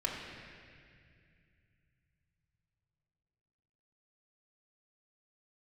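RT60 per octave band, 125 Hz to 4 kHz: 5.0, 3.3, 2.4, 2.0, 2.7, 2.1 s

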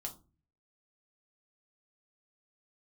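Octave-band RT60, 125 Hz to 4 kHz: 0.70, 0.55, 0.35, 0.30, 0.20, 0.20 s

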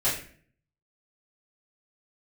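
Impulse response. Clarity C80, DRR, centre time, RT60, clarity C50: 9.0 dB, -11.5 dB, 37 ms, 0.50 s, 5.5 dB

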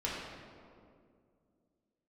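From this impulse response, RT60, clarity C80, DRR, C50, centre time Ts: 2.3 s, 1.5 dB, -6.5 dB, -0.5 dB, 0.104 s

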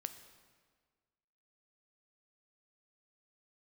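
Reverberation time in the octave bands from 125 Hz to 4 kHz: 1.7, 1.7, 1.7, 1.6, 1.4, 1.3 s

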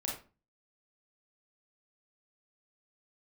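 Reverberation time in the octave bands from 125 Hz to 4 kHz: 0.55, 0.45, 0.35, 0.35, 0.30, 0.25 s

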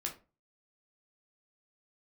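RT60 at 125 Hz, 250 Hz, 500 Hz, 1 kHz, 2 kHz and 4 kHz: 0.50, 0.35, 0.35, 0.30, 0.25, 0.20 s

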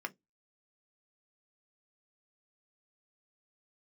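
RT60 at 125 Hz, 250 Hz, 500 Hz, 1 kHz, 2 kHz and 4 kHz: 0.20, 0.20, 0.20, 0.10, 0.10, 0.15 s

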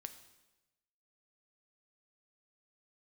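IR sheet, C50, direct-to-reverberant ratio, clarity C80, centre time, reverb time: 11.5 dB, 8.5 dB, 13.5 dB, 10 ms, 1.0 s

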